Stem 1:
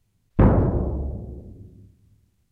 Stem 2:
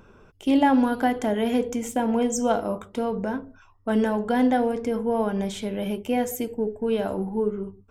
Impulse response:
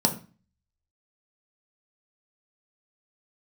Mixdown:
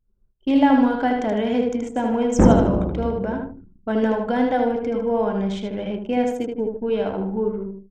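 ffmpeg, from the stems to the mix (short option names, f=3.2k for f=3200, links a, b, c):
-filter_complex "[0:a]adelay=2000,volume=-1dB,asplit=2[a][b];[b]volume=-19dB[c];[1:a]lowpass=5.7k,volume=0.5dB,asplit=2[d][e];[e]volume=-4.5dB[f];[2:a]atrim=start_sample=2205[g];[c][g]afir=irnorm=-1:irlink=0[h];[f]aecho=0:1:77|154|231|308|385|462:1|0.41|0.168|0.0689|0.0283|0.0116[i];[a][d][h][i]amix=inputs=4:normalize=0,agate=range=-33dB:threshold=-45dB:ratio=3:detection=peak,anlmdn=6.31"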